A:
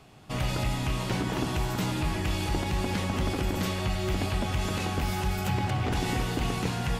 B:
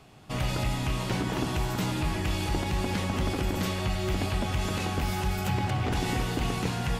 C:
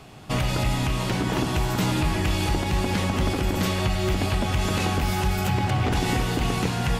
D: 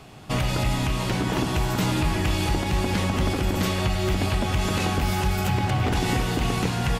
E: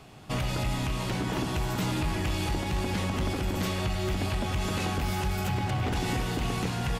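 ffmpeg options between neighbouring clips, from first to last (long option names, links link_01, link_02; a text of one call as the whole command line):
ffmpeg -i in.wav -af anull out.wav
ffmpeg -i in.wav -af "alimiter=limit=-21.5dB:level=0:latency=1:release=473,volume=8dB" out.wav
ffmpeg -i in.wav -af "aecho=1:1:416:0.119" out.wav
ffmpeg -i in.wav -af "asoftclip=type=tanh:threshold=-15dB,volume=-4.5dB" out.wav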